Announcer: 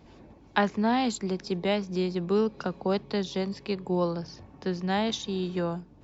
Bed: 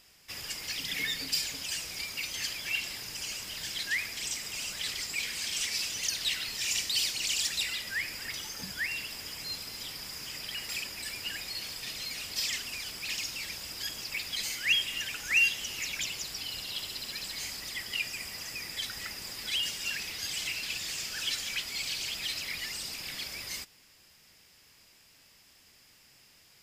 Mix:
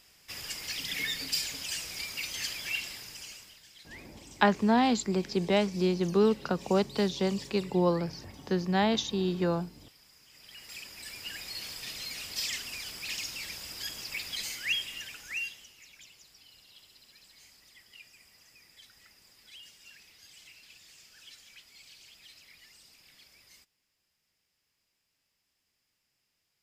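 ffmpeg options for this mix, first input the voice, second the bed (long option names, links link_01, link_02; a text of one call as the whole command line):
ffmpeg -i stem1.wav -i stem2.wav -filter_complex "[0:a]adelay=3850,volume=1dB[link_01];[1:a]volume=16.5dB,afade=type=out:start_time=2.65:duration=0.96:silence=0.125893,afade=type=in:start_time=10.29:duration=1.35:silence=0.141254,afade=type=out:start_time=14.3:duration=1.44:silence=0.125893[link_02];[link_01][link_02]amix=inputs=2:normalize=0" out.wav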